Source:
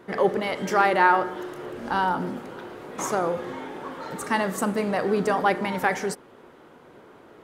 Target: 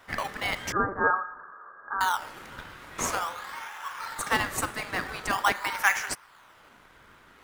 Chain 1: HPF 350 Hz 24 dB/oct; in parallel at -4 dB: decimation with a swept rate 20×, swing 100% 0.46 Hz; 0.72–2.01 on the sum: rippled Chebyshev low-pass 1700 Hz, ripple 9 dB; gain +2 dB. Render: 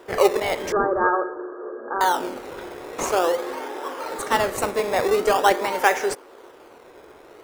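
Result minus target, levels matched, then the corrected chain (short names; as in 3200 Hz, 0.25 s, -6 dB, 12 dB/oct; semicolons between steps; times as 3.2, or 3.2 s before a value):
250 Hz band +3.0 dB
HPF 1100 Hz 24 dB/oct; in parallel at -4 dB: decimation with a swept rate 20×, swing 100% 0.46 Hz; 0.72–2.01 on the sum: rippled Chebyshev low-pass 1700 Hz, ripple 9 dB; gain +2 dB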